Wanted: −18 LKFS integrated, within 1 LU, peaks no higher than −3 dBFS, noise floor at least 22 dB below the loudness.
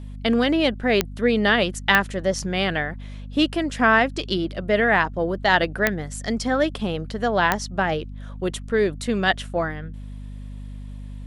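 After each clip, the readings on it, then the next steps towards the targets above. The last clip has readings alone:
number of clicks 4; mains hum 50 Hz; hum harmonics up to 250 Hz; level of the hum −33 dBFS; integrated loudness −22.0 LKFS; sample peak −1.5 dBFS; target loudness −18.0 LKFS
→ click removal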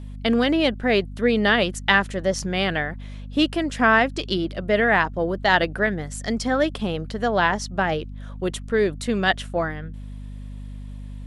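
number of clicks 0; mains hum 50 Hz; hum harmonics up to 250 Hz; level of the hum −33 dBFS
→ mains-hum notches 50/100/150/200/250 Hz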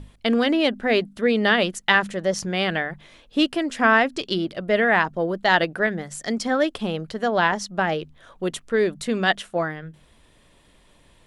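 mains hum none found; integrated loudness −22.5 LKFS; sample peak −2.5 dBFS; target loudness −18.0 LKFS
→ level +4.5 dB
brickwall limiter −3 dBFS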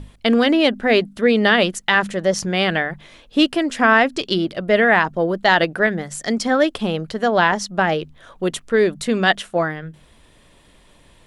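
integrated loudness −18.0 LKFS; sample peak −3.0 dBFS; background noise floor −52 dBFS

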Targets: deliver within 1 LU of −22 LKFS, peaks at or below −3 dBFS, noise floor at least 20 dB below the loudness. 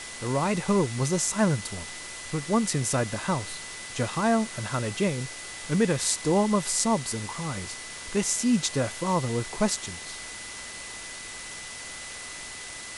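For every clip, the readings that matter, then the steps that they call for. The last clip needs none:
interfering tone 2,000 Hz; level of the tone −43 dBFS; background noise floor −40 dBFS; target noise floor −48 dBFS; integrated loudness −28.0 LKFS; sample peak −7.0 dBFS; target loudness −22.0 LKFS
→ notch filter 2,000 Hz, Q 30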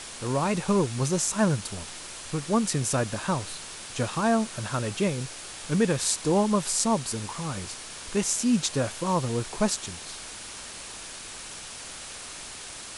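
interfering tone none found; background noise floor −41 dBFS; target noise floor −48 dBFS
→ broadband denoise 7 dB, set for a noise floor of −41 dBFS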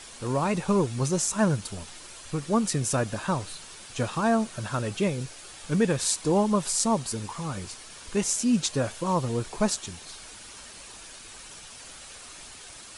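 background noise floor −45 dBFS; target noise floor −47 dBFS
→ broadband denoise 6 dB, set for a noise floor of −45 dBFS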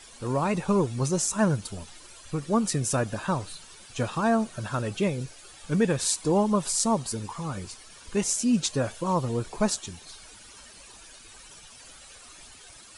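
background noise floor −49 dBFS; integrated loudness −27.0 LKFS; sample peak −7.0 dBFS; target loudness −22.0 LKFS
→ level +5 dB
brickwall limiter −3 dBFS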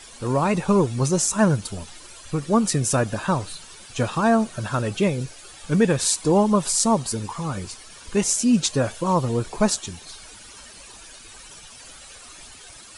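integrated loudness −22.0 LKFS; sample peak −3.0 dBFS; background noise floor −44 dBFS

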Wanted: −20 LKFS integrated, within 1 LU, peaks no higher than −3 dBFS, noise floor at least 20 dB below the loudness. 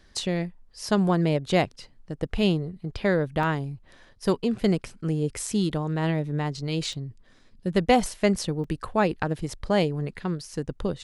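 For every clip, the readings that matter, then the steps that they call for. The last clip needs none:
number of dropouts 3; longest dropout 2.7 ms; integrated loudness −26.5 LKFS; sample peak −6.0 dBFS; target loudness −20.0 LKFS
→ repair the gap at 0:03.43/0:06.93/0:08.64, 2.7 ms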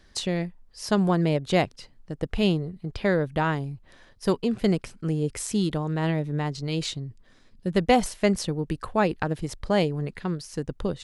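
number of dropouts 0; integrated loudness −26.5 LKFS; sample peak −6.0 dBFS; target loudness −20.0 LKFS
→ level +6.5 dB
brickwall limiter −3 dBFS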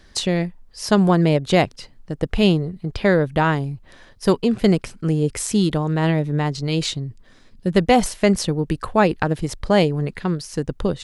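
integrated loudness −20.5 LKFS; sample peak −3.0 dBFS; background noise floor −50 dBFS

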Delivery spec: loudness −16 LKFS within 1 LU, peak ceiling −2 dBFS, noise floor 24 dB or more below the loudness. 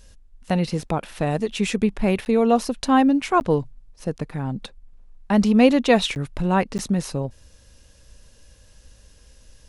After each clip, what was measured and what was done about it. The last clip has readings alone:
number of dropouts 4; longest dropout 9.9 ms; integrated loudness −21.5 LKFS; sample peak −3.5 dBFS; target loudness −16.0 LKFS
→ repair the gap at 0:02.25/0:03.40/0:06.15/0:06.78, 9.9 ms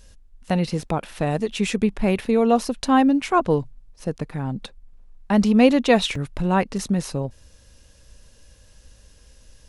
number of dropouts 0; integrated loudness −21.5 LKFS; sample peak −3.5 dBFS; target loudness −16.0 LKFS
→ level +5.5 dB
brickwall limiter −2 dBFS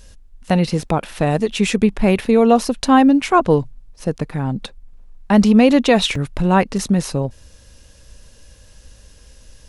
integrated loudness −16.5 LKFS; sample peak −2.0 dBFS; background noise floor −47 dBFS

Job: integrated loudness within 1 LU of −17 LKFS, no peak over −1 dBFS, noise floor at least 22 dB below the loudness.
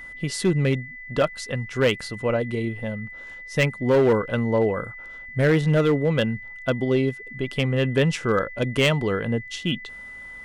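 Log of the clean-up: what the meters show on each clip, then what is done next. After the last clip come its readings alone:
share of clipped samples 1.1%; peaks flattened at −13.0 dBFS; interfering tone 2,000 Hz; level of the tone −37 dBFS; integrated loudness −23.5 LKFS; sample peak −13.0 dBFS; target loudness −17.0 LKFS
→ clipped peaks rebuilt −13 dBFS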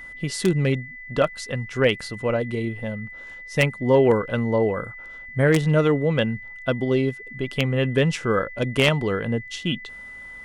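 share of clipped samples 0.0%; interfering tone 2,000 Hz; level of the tone −37 dBFS
→ notch filter 2,000 Hz, Q 30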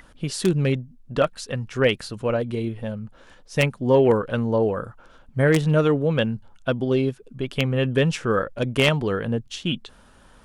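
interfering tone none found; integrated loudness −23.0 LKFS; sample peak −4.0 dBFS; target loudness −17.0 LKFS
→ level +6 dB
brickwall limiter −1 dBFS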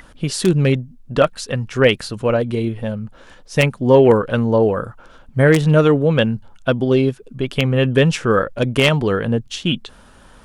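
integrated loudness −17.5 LKFS; sample peak −1.0 dBFS; background noise floor −46 dBFS

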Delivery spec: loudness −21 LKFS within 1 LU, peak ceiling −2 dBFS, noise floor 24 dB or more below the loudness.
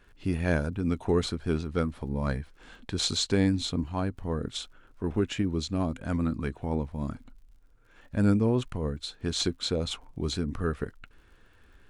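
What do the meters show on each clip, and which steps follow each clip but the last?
crackle rate 39 per second; integrated loudness −30.0 LKFS; sample peak −11.5 dBFS; target loudness −21.0 LKFS
→ click removal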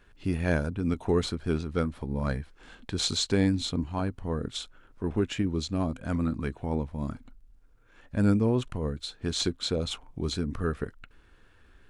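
crackle rate 0.084 per second; integrated loudness −30.0 LKFS; sample peak −11.5 dBFS; target loudness −21.0 LKFS
→ level +9 dB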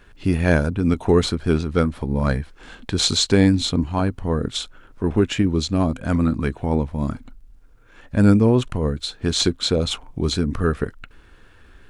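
integrated loudness −21.0 LKFS; sample peak −2.5 dBFS; background noise floor −49 dBFS

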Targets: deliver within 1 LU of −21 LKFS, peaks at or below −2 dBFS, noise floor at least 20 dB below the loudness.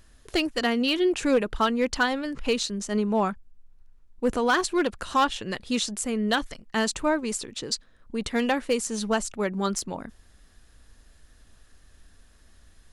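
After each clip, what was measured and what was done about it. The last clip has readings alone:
share of clipped samples 0.3%; peaks flattened at −15.0 dBFS; integrated loudness −26.5 LKFS; sample peak −15.0 dBFS; target loudness −21.0 LKFS
→ clipped peaks rebuilt −15 dBFS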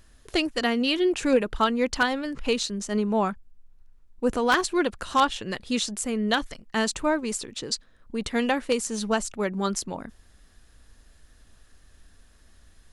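share of clipped samples 0.0%; integrated loudness −26.0 LKFS; sample peak −6.0 dBFS; target loudness −21.0 LKFS
→ level +5 dB
brickwall limiter −2 dBFS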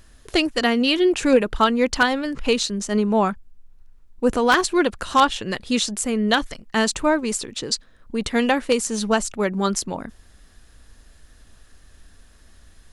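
integrated loudness −21.0 LKFS; sample peak −2.0 dBFS; background noise floor −52 dBFS

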